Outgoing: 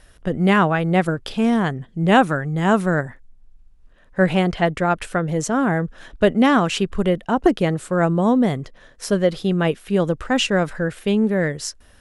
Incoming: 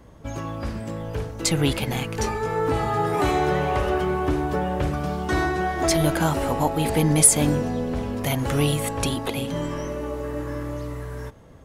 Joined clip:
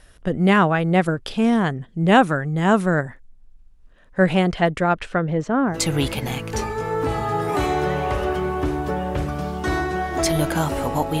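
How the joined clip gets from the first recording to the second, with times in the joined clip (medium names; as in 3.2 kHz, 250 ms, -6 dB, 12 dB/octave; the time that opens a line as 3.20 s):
outgoing
4.83–5.80 s: low-pass 6.8 kHz -> 1.4 kHz
5.72 s: go over to incoming from 1.37 s, crossfade 0.16 s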